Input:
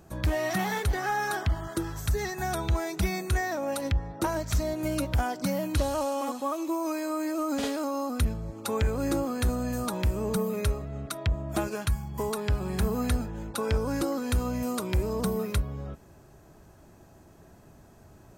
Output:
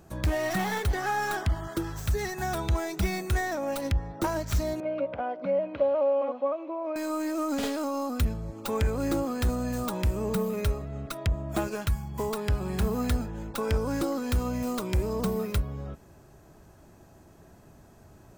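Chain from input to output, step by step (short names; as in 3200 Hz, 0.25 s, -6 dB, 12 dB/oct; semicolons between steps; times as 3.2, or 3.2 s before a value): tracing distortion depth 0.19 ms; 4.8–6.96 speaker cabinet 310–2300 Hz, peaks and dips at 350 Hz -8 dB, 560 Hz +9 dB, 890 Hz -5 dB, 1300 Hz -5 dB, 1800 Hz -9 dB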